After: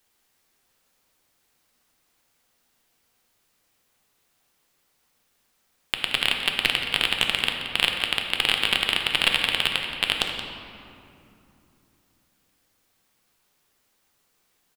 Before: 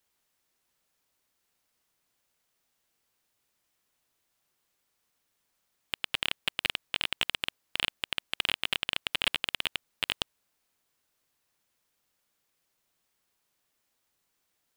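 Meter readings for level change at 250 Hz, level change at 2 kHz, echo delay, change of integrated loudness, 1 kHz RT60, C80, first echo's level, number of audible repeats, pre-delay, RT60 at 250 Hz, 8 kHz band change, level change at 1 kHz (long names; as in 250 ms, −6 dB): +10.0 dB, +9.0 dB, 175 ms, +8.5 dB, 2.7 s, 4.5 dB, −12.0 dB, 1, 3 ms, 3.9 s, +8.0 dB, +9.5 dB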